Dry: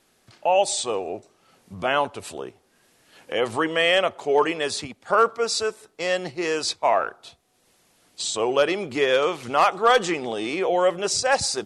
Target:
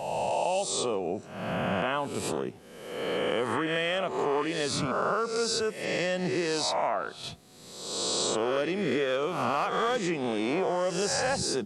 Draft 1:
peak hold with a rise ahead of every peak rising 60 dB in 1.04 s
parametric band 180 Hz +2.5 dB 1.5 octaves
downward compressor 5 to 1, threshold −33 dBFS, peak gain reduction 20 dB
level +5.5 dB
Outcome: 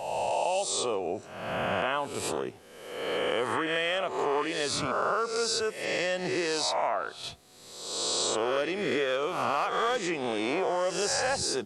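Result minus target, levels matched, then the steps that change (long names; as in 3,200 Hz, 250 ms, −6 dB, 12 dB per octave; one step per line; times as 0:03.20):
250 Hz band −3.5 dB
change: parametric band 180 Hz +11.5 dB 1.5 octaves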